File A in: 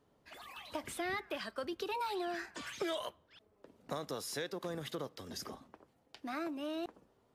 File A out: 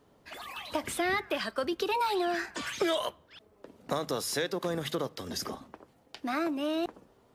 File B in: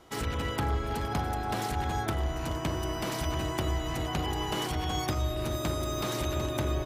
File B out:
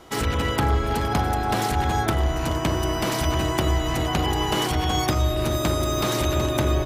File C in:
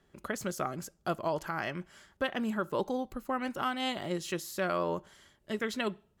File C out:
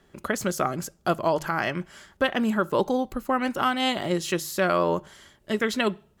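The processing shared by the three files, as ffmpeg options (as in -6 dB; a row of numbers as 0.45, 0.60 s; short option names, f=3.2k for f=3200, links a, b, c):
-af "bandreject=f=50:t=h:w=6,bandreject=f=100:t=h:w=6,bandreject=f=150:t=h:w=6,volume=8.5dB"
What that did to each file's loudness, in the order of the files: +8.5, +8.5, +8.5 LU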